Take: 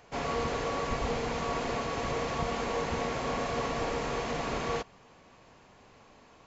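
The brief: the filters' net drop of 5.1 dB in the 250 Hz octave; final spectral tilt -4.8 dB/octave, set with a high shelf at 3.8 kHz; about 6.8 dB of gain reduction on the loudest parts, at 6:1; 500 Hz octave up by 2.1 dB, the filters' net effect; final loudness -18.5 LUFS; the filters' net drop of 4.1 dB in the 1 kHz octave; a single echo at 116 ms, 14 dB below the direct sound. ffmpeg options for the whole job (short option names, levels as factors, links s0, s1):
-af "equalizer=f=250:t=o:g=-8,equalizer=f=500:t=o:g=6,equalizer=f=1000:t=o:g=-7,highshelf=f=3800:g=-4.5,acompressor=threshold=0.0178:ratio=6,aecho=1:1:116:0.2,volume=10"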